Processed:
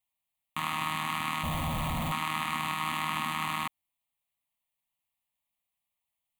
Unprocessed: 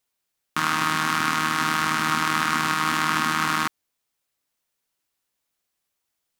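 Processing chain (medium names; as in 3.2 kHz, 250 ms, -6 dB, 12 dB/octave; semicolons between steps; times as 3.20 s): 1.43–2.12 s: Schmitt trigger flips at -27.5 dBFS; static phaser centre 1.5 kHz, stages 6; trim -5 dB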